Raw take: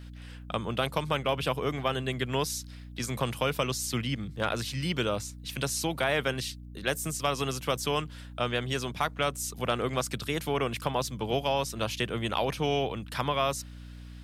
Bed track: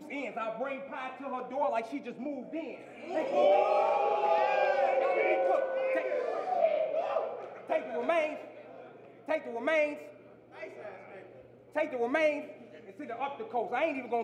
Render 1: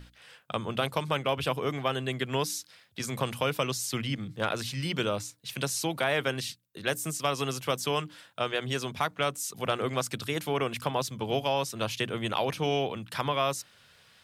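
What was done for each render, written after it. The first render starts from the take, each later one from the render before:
mains-hum notches 60/120/180/240/300 Hz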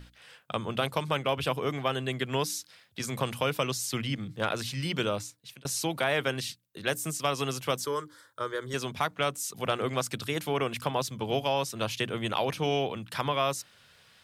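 0:05.04–0:05.65: fade out equal-power
0:07.85–0:08.74: phaser with its sweep stopped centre 720 Hz, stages 6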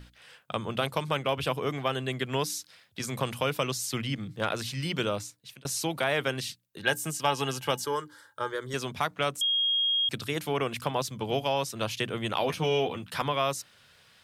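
0:06.79–0:08.52: hollow resonant body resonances 860/1,600/2,900 Hz, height 14 dB, ringing for 85 ms
0:09.41–0:10.09: beep over 3,260 Hz −23 dBFS
0:12.39–0:13.22: double-tracking delay 12 ms −4.5 dB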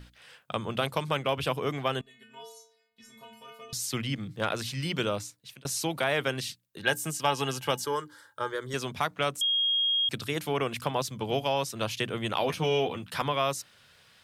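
0:02.01–0:03.73: stiff-string resonator 220 Hz, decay 0.77 s, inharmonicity 0.008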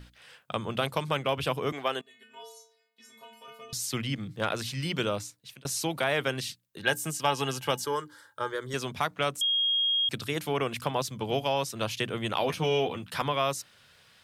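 0:01.72–0:03.48: high-pass filter 300 Hz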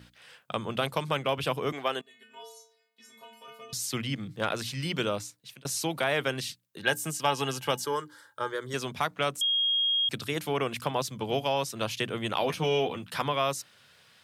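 high-pass filter 96 Hz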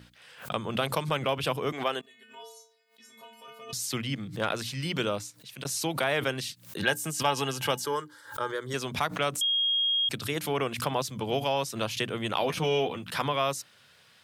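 background raised ahead of every attack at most 130 dB per second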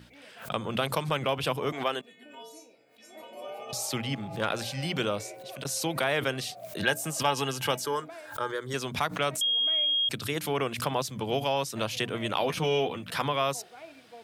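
mix in bed track −17 dB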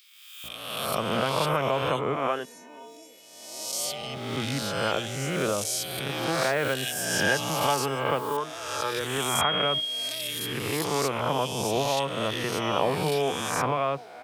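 peak hold with a rise ahead of every peak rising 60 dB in 1.25 s
multiband delay without the direct sound highs, lows 440 ms, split 2,600 Hz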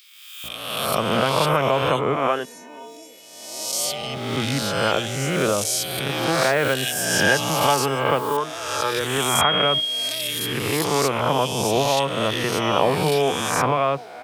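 level +6 dB

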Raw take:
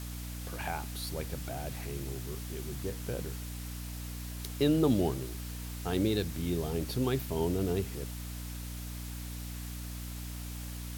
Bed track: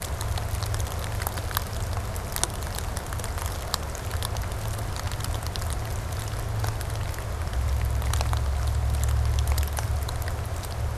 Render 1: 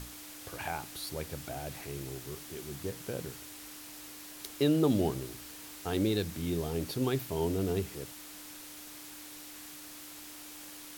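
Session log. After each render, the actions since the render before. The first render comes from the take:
mains-hum notches 60/120/180/240 Hz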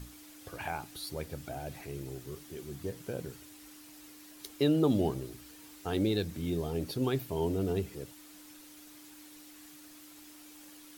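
broadband denoise 8 dB, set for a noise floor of −48 dBFS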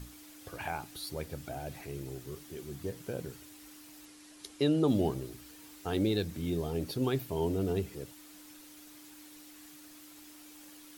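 0:04.05–0:04.88: elliptic low-pass filter 11,000 Hz, stop band 50 dB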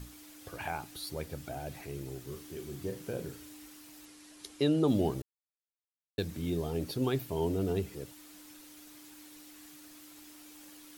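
0:02.24–0:03.66: flutter between parallel walls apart 6.3 metres, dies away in 0.26 s
0:05.22–0:06.18: silence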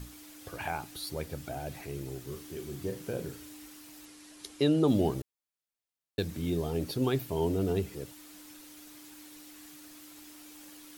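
level +2 dB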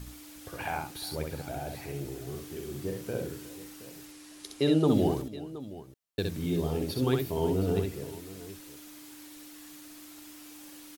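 multi-tap delay 64/361/721 ms −4/−17.5/−16 dB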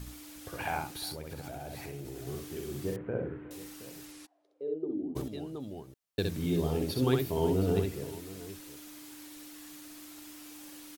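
0:01.11–0:02.27: downward compressor, threshold −37 dBFS
0:02.96–0:03.51: inverse Chebyshev low-pass filter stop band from 5,100 Hz, stop band 50 dB
0:04.25–0:05.15: resonant band-pass 800 Hz → 250 Hz, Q 12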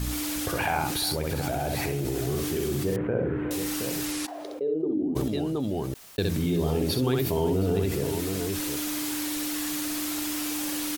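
envelope flattener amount 70%

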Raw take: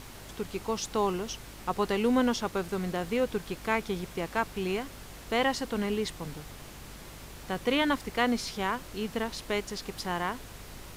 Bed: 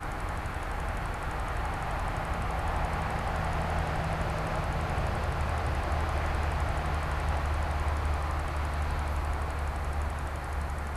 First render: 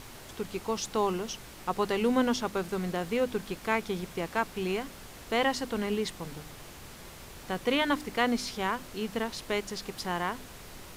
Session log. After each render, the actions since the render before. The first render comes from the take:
hum removal 50 Hz, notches 6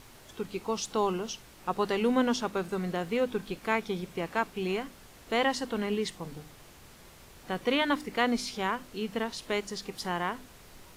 noise reduction from a noise print 6 dB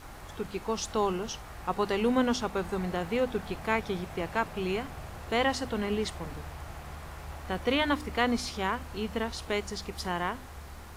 mix in bed −12.5 dB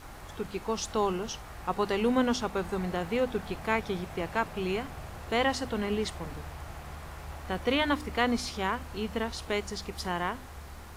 no processing that can be heard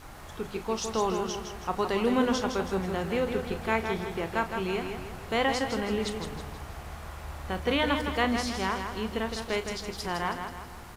double-tracking delay 36 ms −12 dB
repeating echo 161 ms, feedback 46%, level −6.5 dB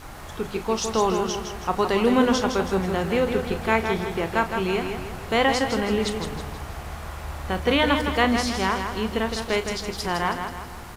level +6 dB

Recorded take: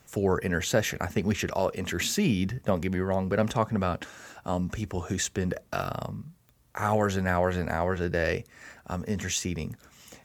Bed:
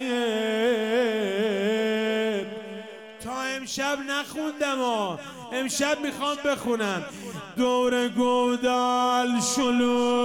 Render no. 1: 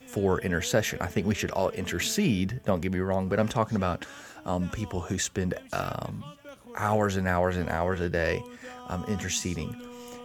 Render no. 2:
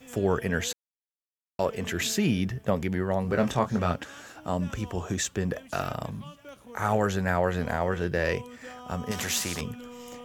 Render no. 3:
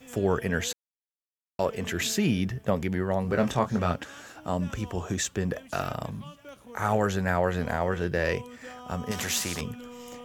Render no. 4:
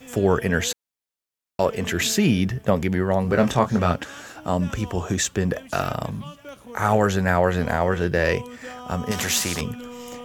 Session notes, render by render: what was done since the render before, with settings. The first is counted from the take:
mix in bed −21.5 dB
0:00.73–0:01.59: silence; 0:03.22–0:03.93: double-tracking delay 23 ms −6.5 dB; 0:09.11–0:09.61: every bin compressed towards the loudest bin 2 to 1
no processing that can be heard
level +6 dB

